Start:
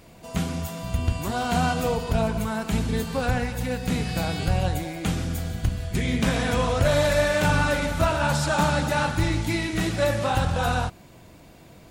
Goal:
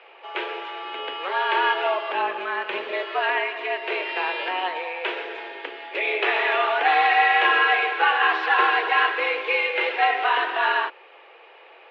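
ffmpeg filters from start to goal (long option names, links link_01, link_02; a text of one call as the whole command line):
ffmpeg -i in.wav -filter_complex "[0:a]crystalizer=i=9.5:c=0,highpass=frequency=240:width_type=q:width=0.5412,highpass=frequency=240:width_type=q:width=1.307,lowpass=frequency=2600:width_type=q:width=0.5176,lowpass=frequency=2600:width_type=q:width=0.7071,lowpass=frequency=2600:width_type=q:width=1.932,afreqshift=180,asettb=1/sr,asplit=3[link_01][link_02][link_03];[link_01]atrim=end=2.144[link_04];[link_02]atrim=start=2.14:end=2.92,asetpts=PTS-STARTPTS,afade=type=in:duration=0.004:curve=qsin,afade=type=out:start_time=0.776:duration=0.004:curve=qsin,tremolo=f=180:d=0.261[link_05];[link_03]atrim=start=2.916[link_06];[link_04][link_05]acrossfade=duration=0.004:curve1=hsin:curve2=qsin[link_07];[link_07][link_06]acrossfade=duration=0.004:curve1=qsin:curve2=hsin" out.wav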